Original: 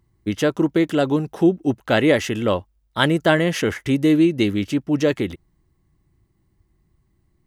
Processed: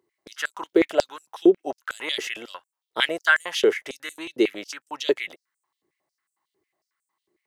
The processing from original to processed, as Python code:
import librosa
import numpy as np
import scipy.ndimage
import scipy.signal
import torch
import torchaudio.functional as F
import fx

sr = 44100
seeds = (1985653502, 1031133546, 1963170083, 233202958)

y = fx.filter_held_highpass(x, sr, hz=11.0, low_hz=410.0, high_hz=7900.0)
y = y * librosa.db_to_amplitude(-5.0)